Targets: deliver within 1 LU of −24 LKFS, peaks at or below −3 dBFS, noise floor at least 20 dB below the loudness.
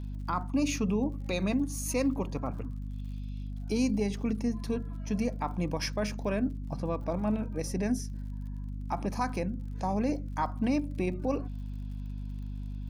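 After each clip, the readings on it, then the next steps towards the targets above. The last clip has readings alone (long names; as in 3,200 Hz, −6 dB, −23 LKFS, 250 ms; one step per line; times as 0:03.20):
crackle rate 51 per second; mains hum 50 Hz; hum harmonics up to 250 Hz; level of the hum −34 dBFS; integrated loudness −32.5 LKFS; sample peak −17.5 dBFS; target loudness −24.0 LKFS
→ click removal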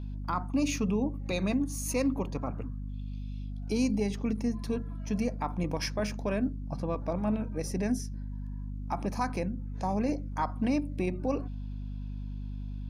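crackle rate 0.16 per second; mains hum 50 Hz; hum harmonics up to 250 Hz; level of the hum −34 dBFS
→ hum removal 50 Hz, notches 5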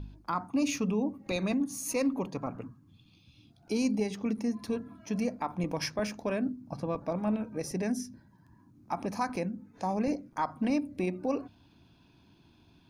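mains hum none found; integrated loudness −33.0 LKFS; sample peak −18.5 dBFS; target loudness −24.0 LKFS
→ level +9 dB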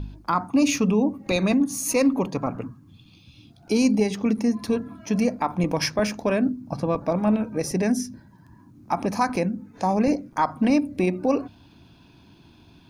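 integrated loudness −24.0 LKFS; sample peak −9.5 dBFS; background noise floor −53 dBFS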